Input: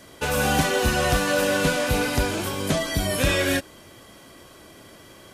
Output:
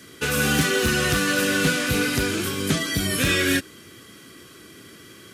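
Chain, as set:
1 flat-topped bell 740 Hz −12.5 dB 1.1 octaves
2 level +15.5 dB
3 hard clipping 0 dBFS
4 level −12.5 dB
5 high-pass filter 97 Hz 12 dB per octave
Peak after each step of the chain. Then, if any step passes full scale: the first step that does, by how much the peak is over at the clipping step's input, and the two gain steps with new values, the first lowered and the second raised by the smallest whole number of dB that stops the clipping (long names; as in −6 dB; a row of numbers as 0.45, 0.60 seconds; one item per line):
−9.5, +6.0, 0.0, −12.5, −8.0 dBFS
step 2, 6.0 dB
step 2 +9.5 dB, step 4 −6.5 dB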